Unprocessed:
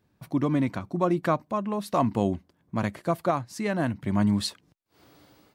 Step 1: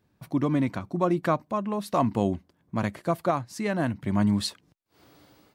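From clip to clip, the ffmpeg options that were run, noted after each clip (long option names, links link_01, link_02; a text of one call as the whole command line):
ffmpeg -i in.wav -af anull out.wav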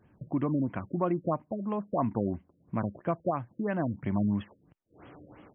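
ffmpeg -i in.wav -af "acompressor=threshold=-53dB:ratio=1.5,afftfilt=real='re*lt(b*sr/1024,570*pow(3400/570,0.5+0.5*sin(2*PI*3*pts/sr)))':imag='im*lt(b*sr/1024,570*pow(3400/570,0.5+0.5*sin(2*PI*3*pts/sr)))':win_size=1024:overlap=0.75,volume=7dB" out.wav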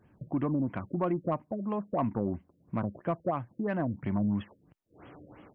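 ffmpeg -i in.wav -af "asoftclip=type=tanh:threshold=-18.5dB" out.wav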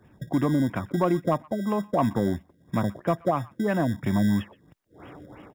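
ffmpeg -i in.wav -filter_complex "[0:a]acrossover=split=200|890[link_01][link_02][link_03];[link_01]acrusher=samples=25:mix=1:aa=0.000001[link_04];[link_03]aecho=1:1:123:0.112[link_05];[link_04][link_02][link_05]amix=inputs=3:normalize=0,volume=6.5dB" out.wav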